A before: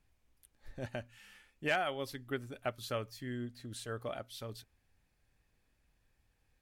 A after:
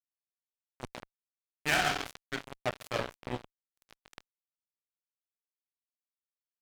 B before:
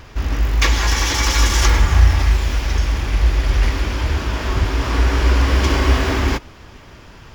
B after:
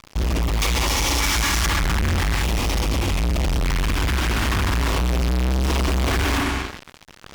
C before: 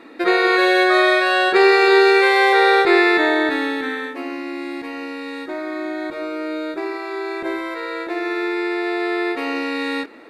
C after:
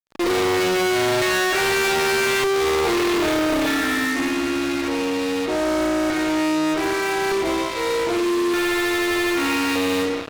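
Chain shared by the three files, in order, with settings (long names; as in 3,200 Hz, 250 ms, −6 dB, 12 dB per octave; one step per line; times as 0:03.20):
spring reverb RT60 1.2 s, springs 32/46 ms, chirp 80 ms, DRR 0 dB
auto-filter notch square 0.41 Hz 520–1,600 Hz
fuzz pedal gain 31 dB, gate −33 dBFS
level −5.5 dB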